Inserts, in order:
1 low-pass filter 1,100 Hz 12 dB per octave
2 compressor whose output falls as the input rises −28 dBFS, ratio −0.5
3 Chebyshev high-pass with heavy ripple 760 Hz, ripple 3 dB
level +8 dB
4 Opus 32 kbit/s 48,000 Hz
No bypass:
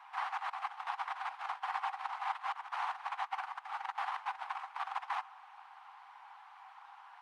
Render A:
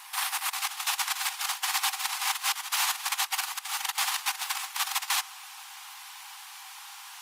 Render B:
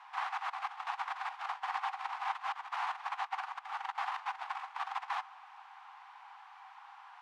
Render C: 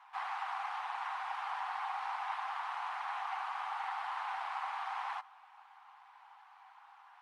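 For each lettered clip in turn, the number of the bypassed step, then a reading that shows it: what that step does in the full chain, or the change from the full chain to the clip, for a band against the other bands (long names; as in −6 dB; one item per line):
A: 1, 4 kHz band +20.0 dB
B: 4, 4 kHz band +1.5 dB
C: 2, change in crest factor −4.0 dB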